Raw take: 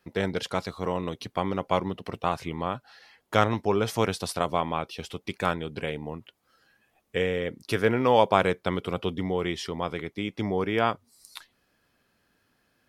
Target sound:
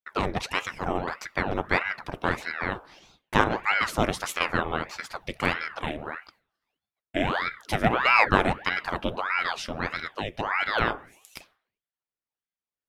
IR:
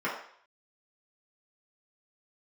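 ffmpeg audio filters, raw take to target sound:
-filter_complex "[0:a]agate=range=-33dB:threshold=-51dB:ratio=3:detection=peak,asplit=2[a][b];[1:a]atrim=start_sample=2205[c];[b][c]afir=irnorm=-1:irlink=0,volume=-22dB[d];[a][d]amix=inputs=2:normalize=0,aeval=exprs='val(0)*sin(2*PI*1000*n/s+1000*0.85/1.6*sin(2*PI*1.6*n/s))':c=same,volume=2.5dB"

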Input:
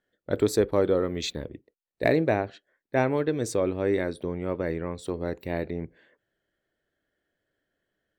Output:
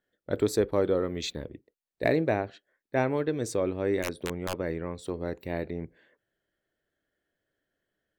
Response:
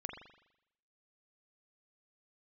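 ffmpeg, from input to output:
-filter_complex "[0:a]asplit=3[a][b][c];[a]afade=t=out:st=4.02:d=0.02[d];[b]aeval=exprs='(mod(9.44*val(0)+1,2)-1)/9.44':c=same,afade=t=in:st=4.02:d=0.02,afade=t=out:st=4.53:d=0.02[e];[c]afade=t=in:st=4.53:d=0.02[f];[d][e][f]amix=inputs=3:normalize=0,volume=-2.5dB"

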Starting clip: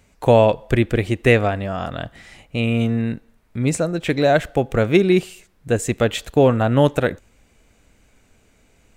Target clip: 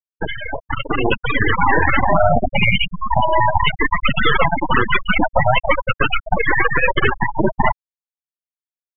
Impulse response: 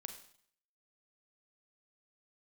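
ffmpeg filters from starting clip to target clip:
-af "afftfilt=real='real(if(lt(b,1008),b+24*(1-2*mod(floor(b/24),2)),b),0)':imag='imag(if(lt(b,1008),b+24*(1-2*mod(floor(b/24),2)),b),0)':win_size=2048:overlap=0.75,aecho=1:1:620:0.211,afftdn=nr=22:nf=-37,afftfilt=real='re*lt(hypot(re,im),0.141)':imag='im*lt(hypot(re,im),0.141)':win_size=1024:overlap=0.75,acompressor=threshold=-52dB:ratio=2,highpass=150,lowpass=2.9k,aresample=8000,acrusher=bits=5:dc=4:mix=0:aa=0.000001,aresample=44100,afftfilt=real='re*gte(hypot(re,im),0.01)':imag='im*gte(hypot(re,im),0.01)':win_size=1024:overlap=0.75,dynaudnorm=f=230:g=11:m=11dB,alimiter=level_in=31.5dB:limit=-1dB:release=50:level=0:latency=1,volume=-1dB"

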